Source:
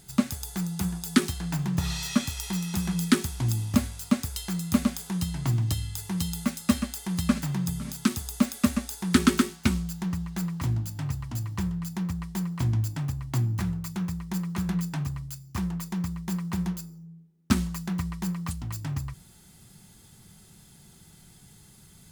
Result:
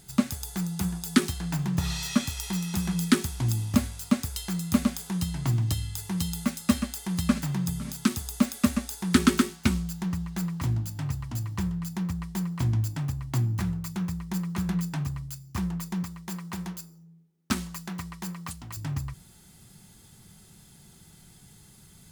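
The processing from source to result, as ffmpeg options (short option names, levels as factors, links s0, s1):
-filter_complex "[0:a]asettb=1/sr,asplit=3[s0][s1][s2];[s0]atrim=end=16.034[s3];[s1]atrim=start=16.03:end=18.77,asetpts=PTS-STARTPTS,afade=t=in:d=0.004:c=qsin,afade=t=out:st=2.736:d=0.004:c=qsin,lowshelf=f=230:g=-11[s4];[s2]atrim=start=18.766[s5];[s3][s4]acrossfade=d=0.004:c1=hsin:c2=qsin[s6];[s6][s5]acrossfade=d=0.004:c1=qsin:c2=hsin"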